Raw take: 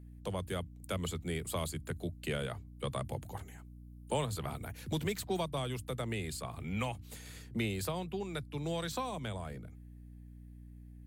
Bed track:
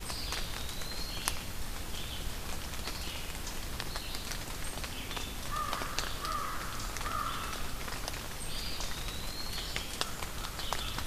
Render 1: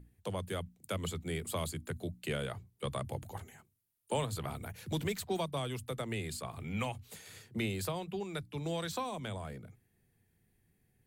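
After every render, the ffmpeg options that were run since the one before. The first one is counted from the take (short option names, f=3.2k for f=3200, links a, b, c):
-af "bandreject=f=60:t=h:w=6,bandreject=f=120:t=h:w=6,bandreject=f=180:t=h:w=6,bandreject=f=240:t=h:w=6,bandreject=f=300:t=h:w=6"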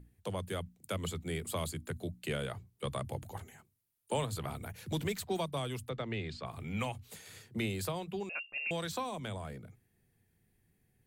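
-filter_complex "[0:a]asplit=3[a][b][c];[a]afade=t=out:st=5.88:d=0.02[d];[b]lowpass=f=4.8k:w=0.5412,lowpass=f=4.8k:w=1.3066,afade=t=in:st=5.88:d=0.02,afade=t=out:st=6.45:d=0.02[e];[c]afade=t=in:st=6.45:d=0.02[f];[d][e][f]amix=inputs=3:normalize=0,asettb=1/sr,asplit=3[g][h][i];[g]atrim=end=8.294[j];[h]atrim=start=8.29:end=8.71,asetpts=PTS-STARTPTS,afade=t=in:d=0.004:c=qsin,afade=t=out:st=0.416:d=0.004:c=qsin,lowpass=f=2.5k:t=q:w=0.5098,lowpass=f=2.5k:t=q:w=0.6013,lowpass=f=2.5k:t=q:w=0.9,lowpass=f=2.5k:t=q:w=2.563,afreqshift=-2900[k];[i]atrim=start=8.706[l];[j][k]acrossfade=d=0.004:c1=hsin:c2=qsin[m];[m][l]acrossfade=d=0.004:c1=qsin:c2=hsin"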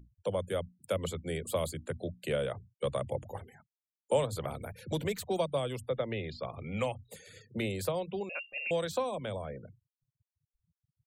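-af "afftfilt=real='re*gte(hypot(re,im),0.00251)':imag='im*gte(hypot(re,im),0.00251)':win_size=1024:overlap=0.75,equalizer=f=540:t=o:w=0.47:g=11"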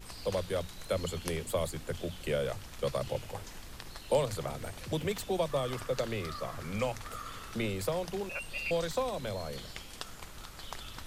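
-filter_complex "[1:a]volume=-8dB[a];[0:a][a]amix=inputs=2:normalize=0"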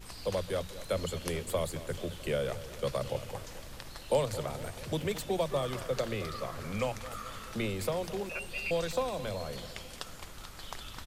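-af "aecho=1:1:218|436|654|872|1090|1308:0.178|0.105|0.0619|0.0365|0.0215|0.0127"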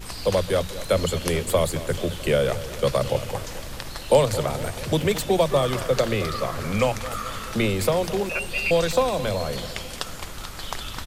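-af "volume=11dB,alimiter=limit=-3dB:level=0:latency=1"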